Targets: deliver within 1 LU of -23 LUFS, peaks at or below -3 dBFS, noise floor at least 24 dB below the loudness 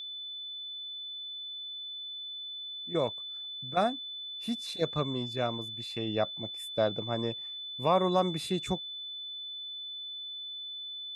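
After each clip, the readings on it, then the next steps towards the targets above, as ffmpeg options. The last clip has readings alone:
steady tone 3.5 kHz; tone level -38 dBFS; loudness -33.5 LUFS; peak level -13.5 dBFS; loudness target -23.0 LUFS
-> -af "bandreject=f=3500:w=30"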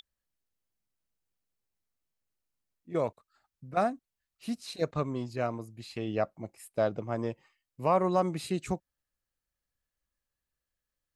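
steady tone not found; loudness -32.5 LUFS; peak level -14.0 dBFS; loudness target -23.0 LUFS
-> -af "volume=2.99"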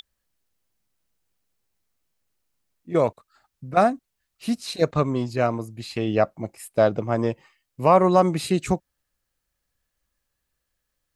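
loudness -23.0 LUFS; peak level -4.5 dBFS; noise floor -79 dBFS

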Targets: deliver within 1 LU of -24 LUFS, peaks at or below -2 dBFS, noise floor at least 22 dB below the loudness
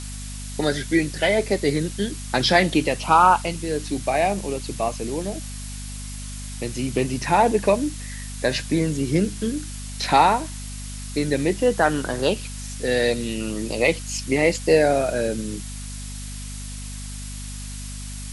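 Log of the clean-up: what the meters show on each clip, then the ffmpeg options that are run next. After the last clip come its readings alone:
hum 50 Hz; highest harmonic 250 Hz; hum level -32 dBFS; noise floor -33 dBFS; noise floor target -44 dBFS; loudness -22.0 LUFS; peak level -3.0 dBFS; loudness target -24.0 LUFS
-> -af "bandreject=f=50:t=h:w=6,bandreject=f=100:t=h:w=6,bandreject=f=150:t=h:w=6,bandreject=f=200:t=h:w=6,bandreject=f=250:t=h:w=6"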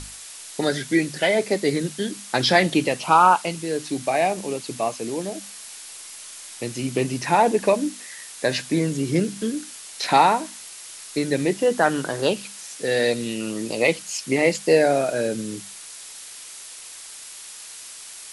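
hum not found; noise floor -40 dBFS; noise floor target -44 dBFS
-> -af "afftdn=nr=6:nf=-40"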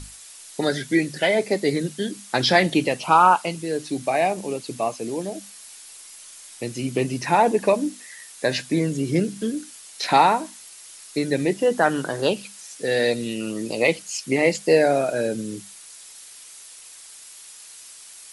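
noise floor -44 dBFS; noise floor target -45 dBFS
-> -af "afftdn=nr=6:nf=-44"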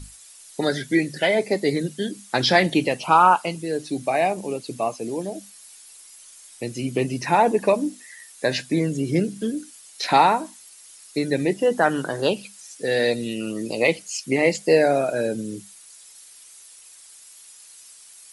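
noise floor -47 dBFS; loudness -22.5 LUFS; peak level -3.0 dBFS; loudness target -24.0 LUFS
-> -af "volume=0.841"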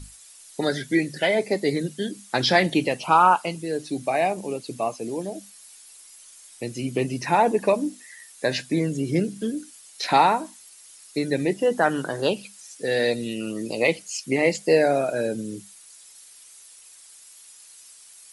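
loudness -24.0 LUFS; peak level -4.5 dBFS; noise floor -49 dBFS

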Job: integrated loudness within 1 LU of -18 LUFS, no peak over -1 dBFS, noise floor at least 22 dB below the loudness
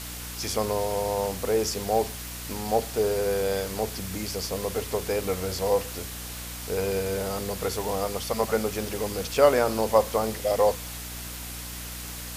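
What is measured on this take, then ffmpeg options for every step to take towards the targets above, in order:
hum 60 Hz; highest harmonic 300 Hz; hum level -38 dBFS; noise floor -37 dBFS; noise floor target -50 dBFS; loudness -27.5 LUFS; peak level -5.5 dBFS; loudness target -18.0 LUFS
-> -af "bandreject=f=60:t=h:w=4,bandreject=f=120:t=h:w=4,bandreject=f=180:t=h:w=4,bandreject=f=240:t=h:w=4,bandreject=f=300:t=h:w=4"
-af "afftdn=nr=13:nf=-37"
-af "volume=2.99,alimiter=limit=0.891:level=0:latency=1"

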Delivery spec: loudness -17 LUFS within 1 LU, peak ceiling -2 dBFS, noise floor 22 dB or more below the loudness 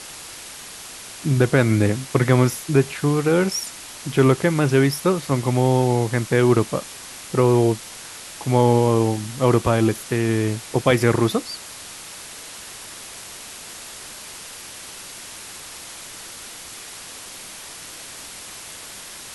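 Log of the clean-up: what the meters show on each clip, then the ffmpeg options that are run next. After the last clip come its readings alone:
noise floor -38 dBFS; noise floor target -42 dBFS; loudness -20.0 LUFS; peak level -2.0 dBFS; loudness target -17.0 LUFS
-> -af "afftdn=nr=6:nf=-38"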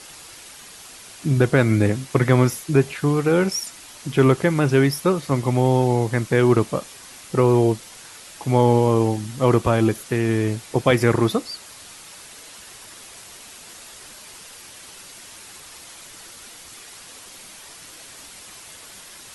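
noise floor -43 dBFS; loudness -20.0 LUFS; peak level -2.0 dBFS; loudness target -17.0 LUFS
-> -af "volume=1.41,alimiter=limit=0.794:level=0:latency=1"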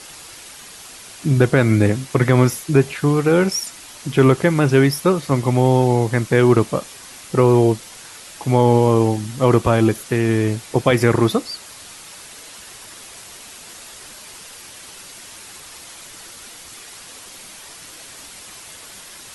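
loudness -17.0 LUFS; peak level -2.0 dBFS; noise floor -40 dBFS

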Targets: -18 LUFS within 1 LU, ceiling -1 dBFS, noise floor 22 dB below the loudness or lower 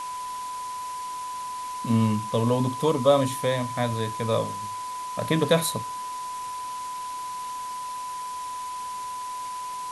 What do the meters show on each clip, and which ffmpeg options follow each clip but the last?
steady tone 1 kHz; tone level -31 dBFS; noise floor -34 dBFS; noise floor target -50 dBFS; loudness -28.0 LUFS; peak level -7.0 dBFS; loudness target -18.0 LUFS
-> -af "bandreject=f=1000:w=30"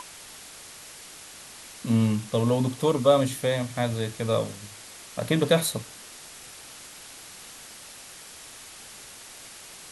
steady tone not found; noise floor -45 dBFS; noise floor target -48 dBFS
-> -af "afftdn=nr=6:nf=-45"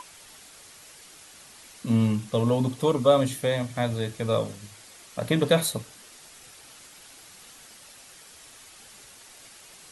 noise floor -50 dBFS; loudness -25.5 LUFS; peak level -7.5 dBFS; loudness target -18.0 LUFS
-> -af "volume=2.37,alimiter=limit=0.891:level=0:latency=1"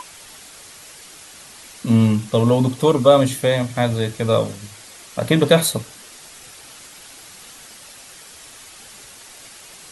loudness -18.0 LUFS; peak level -1.0 dBFS; noise floor -42 dBFS

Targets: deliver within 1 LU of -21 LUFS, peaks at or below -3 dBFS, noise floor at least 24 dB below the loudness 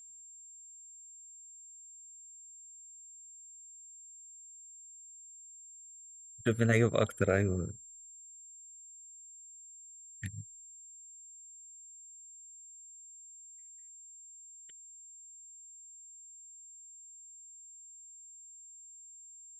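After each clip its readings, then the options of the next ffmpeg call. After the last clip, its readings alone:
steady tone 7.4 kHz; tone level -50 dBFS; loudness -40.5 LUFS; peak level -13.0 dBFS; loudness target -21.0 LUFS
-> -af "bandreject=f=7400:w=30"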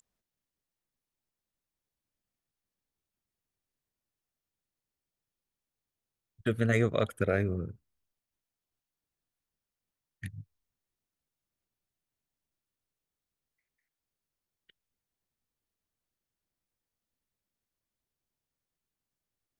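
steady tone not found; loudness -30.0 LUFS; peak level -13.0 dBFS; loudness target -21.0 LUFS
-> -af "volume=2.82"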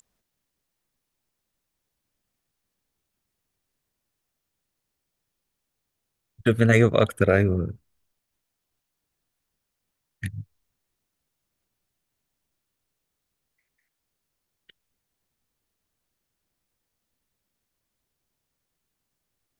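loudness -21.0 LUFS; peak level -4.0 dBFS; noise floor -81 dBFS

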